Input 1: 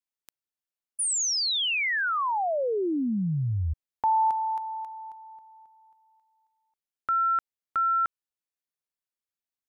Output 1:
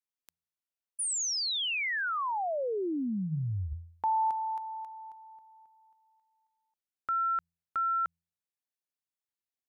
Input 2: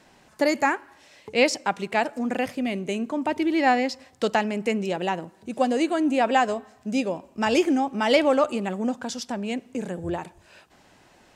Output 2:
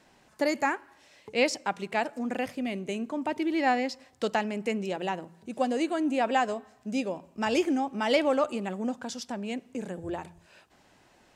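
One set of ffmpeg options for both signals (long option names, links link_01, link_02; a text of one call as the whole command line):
ffmpeg -i in.wav -af "bandreject=frequency=84.39:width_type=h:width=4,bandreject=frequency=168.78:width_type=h:width=4,volume=-5dB" out.wav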